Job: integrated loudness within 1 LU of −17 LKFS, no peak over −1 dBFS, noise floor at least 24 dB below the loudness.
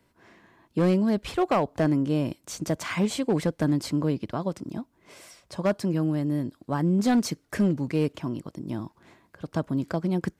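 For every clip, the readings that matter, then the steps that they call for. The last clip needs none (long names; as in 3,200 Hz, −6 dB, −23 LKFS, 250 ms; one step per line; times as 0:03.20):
share of clipped samples 1.0%; peaks flattened at −16.5 dBFS; integrated loudness −27.0 LKFS; sample peak −16.5 dBFS; target loudness −17.0 LKFS
→ clipped peaks rebuilt −16.5 dBFS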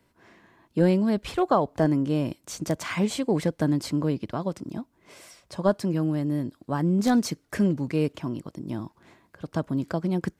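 share of clipped samples 0.0%; integrated loudness −26.5 LKFS; sample peak −8.5 dBFS; target loudness −17.0 LKFS
→ level +9.5 dB
brickwall limiter −1 dBFS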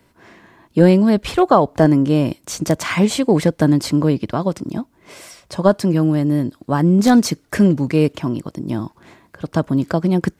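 integrated loudness −17.0 LKFS; sample peak −1.0 dBFS; background noise floor −58 dBFS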